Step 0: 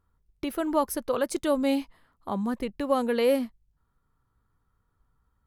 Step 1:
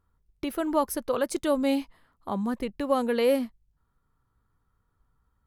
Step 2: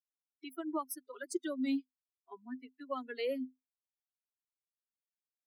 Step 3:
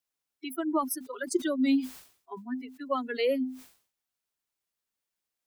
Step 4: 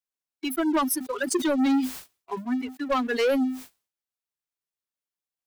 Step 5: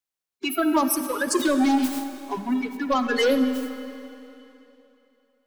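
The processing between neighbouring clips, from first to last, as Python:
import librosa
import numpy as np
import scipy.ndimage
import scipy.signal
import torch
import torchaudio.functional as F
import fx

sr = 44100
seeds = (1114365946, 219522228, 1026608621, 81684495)

y1 = x
y2 = fx.bin_expand(y1, sr, power=3.0)
y2 = scipy.signal.sosfilt(scipy.signal.cheby1(6, 6, 250.0, 'highpass', fs=sr, output='sos'), y2)
y2 = fx.peak_eq(y2, sr, hz=820.0, db=-14.5, octaves=0.9)
y2 = F.gain(torch.from_numpy(y2), 1.0).numpy()
y3 = fx.sustainer(y2, sr, db_per_s=120.0)
y3 = F.gain(torch.from_numpy(y3), 8.5).numpy()
y4 = fx.leveller(y3, sr, passes=3)
y4 = F.gain(torch.from_numpy(y4), -2.0).numpy()
y5 = fx.spec_quant(y4, sr, step_db=30)
y5 = fx.rev_freeverb(y5, sr, rt60_s=3.0, hf_ratio=0.95, predelay_ms=10, drr_db=9.0)
y5 = F.gain(torch.from_numpy(y5), 3.0).numpy()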